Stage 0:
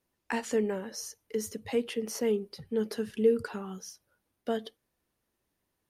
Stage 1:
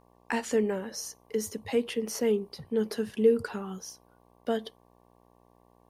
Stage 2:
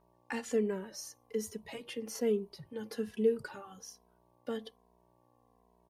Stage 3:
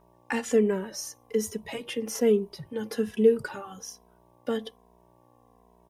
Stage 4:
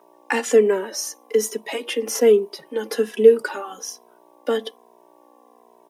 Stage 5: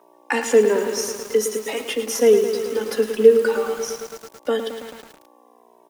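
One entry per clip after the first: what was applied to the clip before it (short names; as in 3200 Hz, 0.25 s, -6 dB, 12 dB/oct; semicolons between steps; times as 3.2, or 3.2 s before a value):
buzz 60 Hz, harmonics 19, -64 dBFS -1 dB/oct; gain +2 dB
endless flanger 2.7 ms -1.2 Hz; gain -4 dB
notch 4400 Hz, Q 8.9; gain +8.5 dB
steep high-pass 260 Hz 36 dB/oct; gain +8.5 dB
lo-fi delay 0.109 s, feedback 80%, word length 6-bit, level -8.5 dB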